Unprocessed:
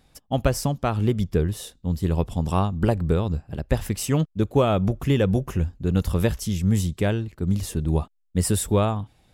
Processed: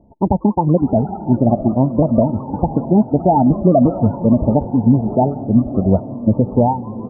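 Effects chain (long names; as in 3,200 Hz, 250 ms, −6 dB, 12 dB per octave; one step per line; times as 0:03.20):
gliding playback speed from 147% → 116%
Chebyshev low-pass with heavy ripple 920 Hz, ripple 6 dB
low-shelf EQ 390 Hz −8 dB
echo with shifted repeats 188 ms, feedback 50%, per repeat +140 Hz, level −20 dB
reverb reduction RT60 1.7 s
on a send: feedback delay with all-pass diffusion 687 ms, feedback 53%, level −14 dB
on the sum: boost into a limiter +21.5 dB
phaser whose notches keep moving one way falling 0.49 Hz
level −1.5 dB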